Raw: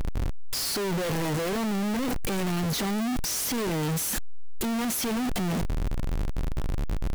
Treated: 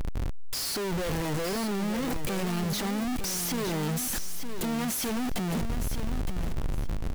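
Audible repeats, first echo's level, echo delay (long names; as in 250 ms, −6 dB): 2, −8.5 dB, 913 ms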